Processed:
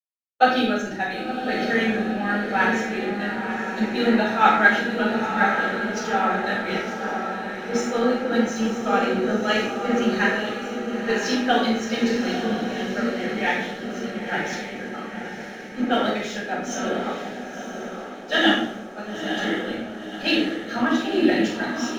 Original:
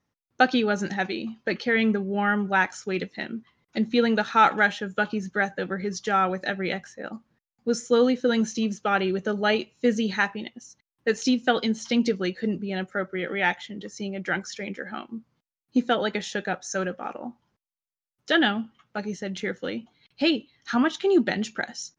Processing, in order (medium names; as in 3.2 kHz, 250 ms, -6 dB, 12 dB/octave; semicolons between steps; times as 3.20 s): on a send: echo that smears into a reverb 974 ms, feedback 58%, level -3.5 dB; on the sum: harmonic-percussive split percussive +5 dB; hysteresis with a dead band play -38.5 dBFS; simulated room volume 210 m³, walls mixed, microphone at 6.3 m; three bands expanded up and down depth 40%; trim -17.5 dB